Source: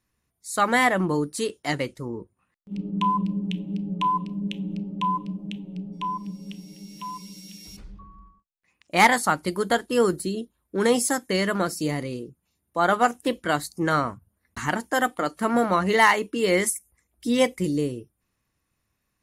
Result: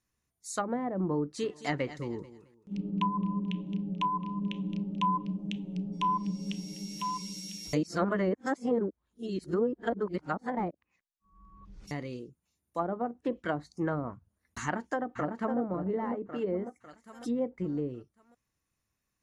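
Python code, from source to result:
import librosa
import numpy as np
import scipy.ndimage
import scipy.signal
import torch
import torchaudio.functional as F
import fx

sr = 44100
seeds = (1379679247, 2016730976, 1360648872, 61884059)

y = fx.echo_feedback(x, sr, ms=218, feedback_pct=26, wet_db=-16.0, at=(1.42, 5.15), fade=0.02)
y = fx.echo_throw(y, sr, start_s=14.6, length_s=0.99, ms=550, feedback_pct=40, wet_db=-2.5)
y = fx.edit(y, sr, fx.reverse_span(start_s=7.73, length_s=4.18), tone=tone)
y = fx.env_lowpass_down(y, sr, base_hz=490.0, full_db=-17.5)
y = fx.peak_eq(y, sr, hz=6400.0, db=6.0, octaves=0.54)
y = fx.rider(y, sr, range_db=10, speed_s=2.0)
y = F.gain(torch.from_numpy(y), -5.5).numpy()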